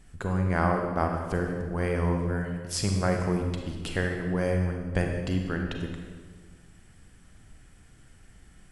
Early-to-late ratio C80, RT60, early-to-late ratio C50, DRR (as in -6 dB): 5.5 dB, 1.6 s, 3.5 dB, 2.5 dB